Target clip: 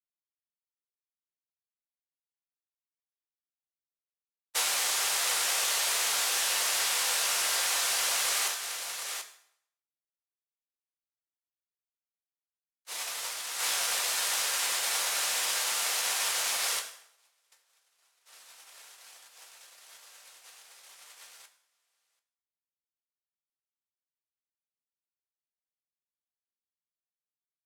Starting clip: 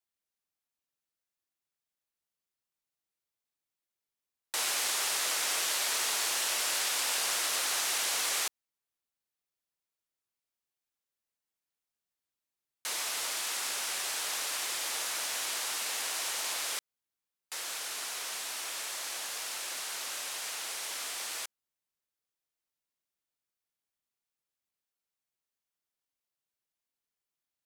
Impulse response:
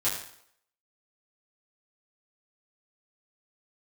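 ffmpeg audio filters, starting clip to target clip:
-filter_complex "[0:a]aecho=1:1:736:0.668,agate=range=-47dB:threshold=-32dB:ratio=16:detection=peak,asplit=2[a][b];[1:a]atrim=start_sample=2205[c];[b][c]afir=irnorm=-1:irlink=0,volume=-11.5dB[d];[a][d]amix=inputs=2:normalize=0,acompressor=threshold=-33dB:ratio=6,equalizer=f=300:w=4.5:g=-14.5,volume=7dB"

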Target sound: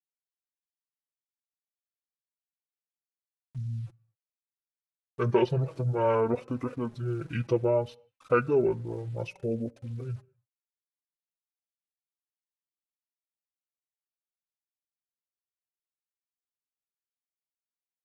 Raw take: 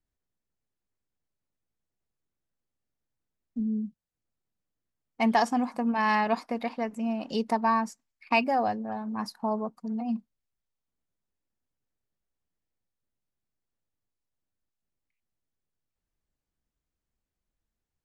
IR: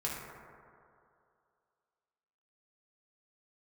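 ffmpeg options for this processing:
-filter_complex "[0:a]aeval=exprs='val(0)*gte(abs(val(0)),0.00299)':c=same,asetrate=23361,aresample=44100,atempo=1.88775,asplit=2[a][b];[1:a]atrim=start_sample=2205,afade=t=out:st=0.35:d=0.01,atrim=end_sample=15876,asetrate=52920,aresample=44100[c];[b][c]afir=irnorm=-1:irlink=0,volume=-24.5dB[d];[a][d]amix=inputs=2:normalize=0,flanger=delay=3.8:depth=2.4:regen=26:speed=0.61:shape=sinusoidal,adynamicequalizer=threshold=0.00398:dfrequency=1900:dqfactor=0.7:tfrequency=1900:tqfactor=0.7:attack=5:release=100:ratio=0.375:range=3:mode=cutabove:tftype=highshelf,volume=3.5dB"

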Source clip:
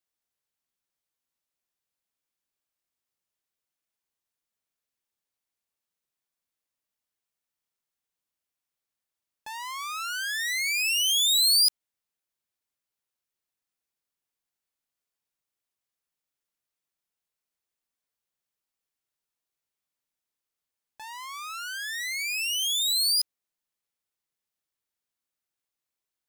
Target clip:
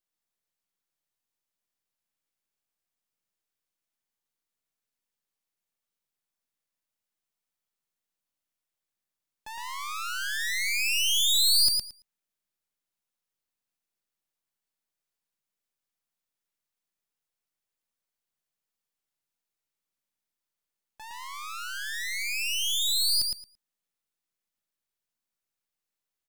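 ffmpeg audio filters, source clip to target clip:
-filter_complex "[0:a]aeval=exprs='if(lt(val(0),0),0.447*val(0),val(0))':c=same,equalizer=f=200:w=3.7:g=4,asplit=2[a][b];[b]aecho=0:1:112|224|336:0.631|0.0946|0.0142[c];[a][c]amix=inputs=2:normalize=0"

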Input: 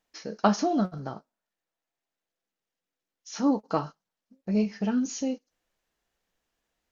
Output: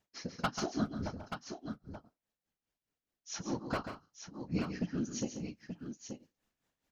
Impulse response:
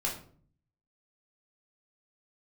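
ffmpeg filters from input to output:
-filter_complex "[0:a]equalizer=f=190:t=o:w=0.97:g=8,acrossover=split=1200[a][b];[a]acompressor=threshold=-28dB:ratio=16[c];[c][b]amix=inputs=2:normalize=0,tremolo=f=4.8:d=0.95,aeval=exprs='0.075*(abs(mod(val(0)/0.075+3,4)-2)-1)':c=same,afftfilt=real='hypot(re,im)*cos(2*PI*random(0))':imag='hypot(re,im)*sin(2*PI*random(1))':win_size=512:overlap=0.75,aecho=1:1:138|175|881:0.355|0.158|0.398,volume=5dB"

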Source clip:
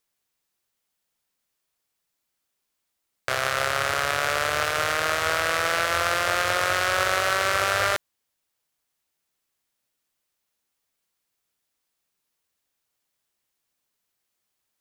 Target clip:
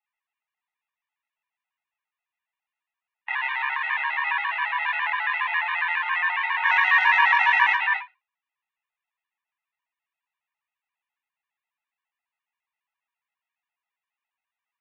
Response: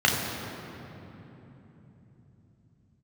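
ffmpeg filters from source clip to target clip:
-filter_complex "[0:a]highpass=f=340:t=q:w=0.5412,highpass=f=340:t=q:w=1.307,lowpass=f=2.6k:t=q:w=0.5176,lowpass=f=2.6k:t=q:w=0.7071,lowpass=f=2.6k:t=q:w=1.932,afreqshift=380,asplit=3[a][b][c];[a]afade=t=out:st=6.63:d=0.02[d];[b]acontrast=61,afade=t=in:st=6.63:d=0.02,afade=t=out:st=7.72:d=0.02[e];[c]afade=t=in:st=7.72:d=0.02[f];[d][e][f]amix=inputs=3:normalize=0,flanger=delay=9.5:depth=7.6:regen=-64:speed=0.57:shape=sinusoidal,highshelf=f=2k:g=-4.5[g];[1:a]atrim=start_sample=2205,atrim=end_sample=3528,asetrate=57330,aresample=44100[h];[g][h]afir=irnorm=-1:irlink=0,afftfilt=real='re*gt(sin(2*PI*7.3*pts/sr)*(1-2*mod(floor(b*sr/1024/310),2)),0)':imag='im*gt(sin(2*PI*7.3*pts/sr)*(1-2*mod(floor(b*sr/1024/310),2)),0)':win_size=1024:overlap=0.75,volume=-5dB"

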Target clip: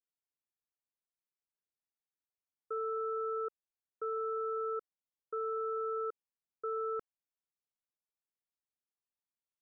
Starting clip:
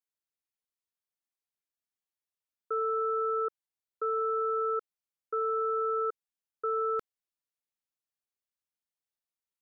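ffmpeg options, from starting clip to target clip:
-af "lowpass=1.4k,volume=-5dB"

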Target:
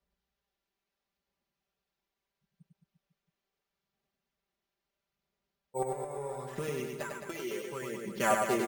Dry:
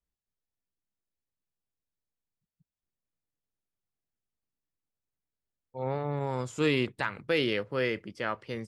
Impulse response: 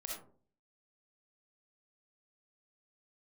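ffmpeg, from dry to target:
-filter_complex "[0:a]highpass=52,equalizer=f=620:t=o:w=1.6:g=5,asettb=1/sr,asplit=3[a][b][c];[a]atrim=end=5.824[d];[b]atrim=start=5.82:end=8.17,asetpts=PTS-STARTPTS,afade=t=in:d=0.004:c=qsin,afade=t=out:st=2.346:d=0.004:c=qsin,acompressor=threshold=-40dB:ratio=10[e];[c]atrim=start=8.166[f];[d][e]acrossfade=d=0.004:c1=hsin:c2=qsin[g];[g][f]acrossfade=d=0.004:c1=qsin:c2=hsin,aphaser=in_gain=1:out_gain=1:delay=3:decay=0.49:speed=0.75:type=sinusoidal,acrusher=samples=5:mix=1:aa=0.000001,aecho=1:1:5.1:0.78,aecho=1:1:100|215|347.2|499.3|674.2:0.631|0.398|0.251|0.158|0.1"

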